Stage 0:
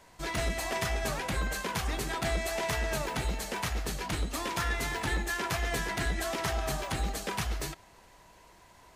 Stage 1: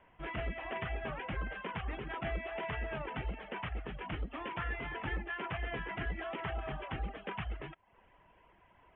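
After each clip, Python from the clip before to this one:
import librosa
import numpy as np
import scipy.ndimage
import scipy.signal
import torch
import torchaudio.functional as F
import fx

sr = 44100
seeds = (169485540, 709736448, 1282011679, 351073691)

y = fx.dereverb_blind(x, sr, rt60_s=0.51)
y = scipy.signal.sosfilt(scipy.signal.butter(16, 3200.0, 'lowpass', fs=sr, output='sos'), y)
y = y * 10.0 ** (-5.5 / 20.0)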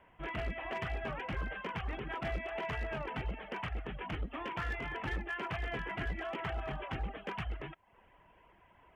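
y = fx.clip_asym(x, sr, top_db=-33.5, bottom_db=-29.0)
y = y * 10.0 ** (1.0 / 20.0)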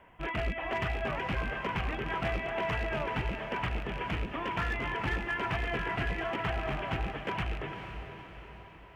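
y = fx.rattle_buzz(x, sr, strikes_db=-41.0, level_db=-36.0)
y = fx.echo_diffused(y, sr, ms=463, feedback_pct=52, wet_db=-8.0)
y = y * 10.0 ** (5.0 / 20.0)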